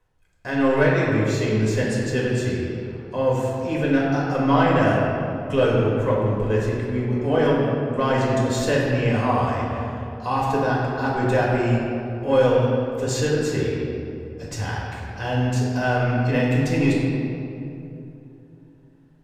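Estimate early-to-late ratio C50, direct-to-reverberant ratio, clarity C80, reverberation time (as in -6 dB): -1.0 dB, -5.5 dB, 0.5 dB, 2.9 s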